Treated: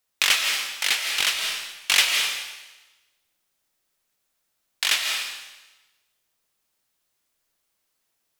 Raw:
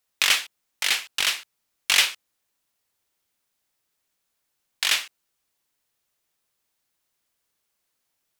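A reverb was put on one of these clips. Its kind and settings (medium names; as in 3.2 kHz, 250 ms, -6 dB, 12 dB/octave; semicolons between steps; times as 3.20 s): algorithmic reverb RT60 1.1 s, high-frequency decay 1×, pre-delay 120 ms, DRR 3 dB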